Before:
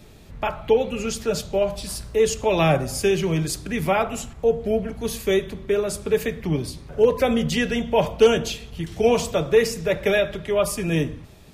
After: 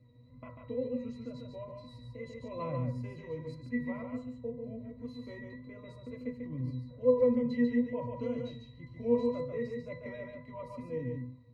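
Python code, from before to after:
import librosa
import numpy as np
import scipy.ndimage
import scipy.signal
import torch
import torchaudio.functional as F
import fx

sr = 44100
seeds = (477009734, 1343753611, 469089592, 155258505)

p1 = fx.octave_resonator(x, sr, note='B', decay_s=0.25)
p2 = fx.wow_flutter(p1, sr, seeds[0], rate_hz=2.1, depth_cents=40.0)
y = p2 + fx.echo_single(p2, sr, ms=143, db=-4.5, dry=0)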